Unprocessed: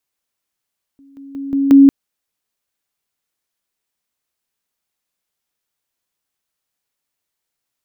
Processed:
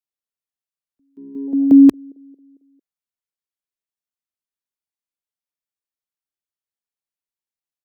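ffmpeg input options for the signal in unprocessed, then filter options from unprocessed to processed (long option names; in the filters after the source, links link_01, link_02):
-f lavfi -i "aevalsrc='pow(10,(-43+10*floor(t/0.18))/20)*sin(2*PI*276*t)':duration=0.9:sample_rate=44100"
-filter_complex "[0:a]afwtdn=0.0631,acrossover=split=180|320|420[link_01][link_02][link_03][link_04];[link_01]aeval=exprs='(mod(7.08*val(0)+1,2)-1)/7.08':channel_layout=same[link_05];[link_03]aecho=1:1:225|450|675|900:0.106|0.0519|0.0254|0.0125[link_06];[link_05][link_02][link_06][link_04]amix=inputs=4:normalize=0"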